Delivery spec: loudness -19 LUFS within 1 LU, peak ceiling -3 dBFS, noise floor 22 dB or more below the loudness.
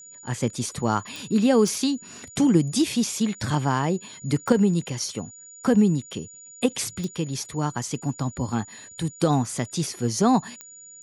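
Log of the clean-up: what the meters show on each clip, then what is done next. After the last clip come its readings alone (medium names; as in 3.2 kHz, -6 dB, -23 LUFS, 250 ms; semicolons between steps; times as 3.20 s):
clicks found 5; steady tone 6.9 kHz; tone level -43 dBFS; loudness -24.5 LUFS; peak level -6.0 dBFS; loudness target -19.0 LUFS
-> de-click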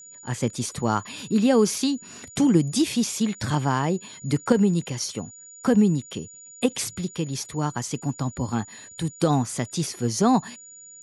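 clicks found 0; steady tone 6.9 kHz; tone level -43 dBFS
-> band-stop 6.9 kHz, Q 30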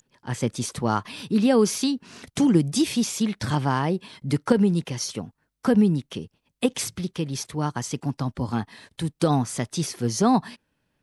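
steady tone not found; loudness -24.5 LUFS; peak level -6.0 dBFS; loudness target -19.0 LUFS
-> trim +5.5 dB; peak limiter -3 dBFS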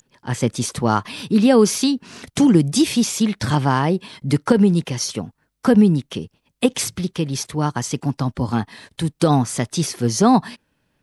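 loudness -19.0 LUFS; peak level -3.0 dBFS; noise floor -69 dBFS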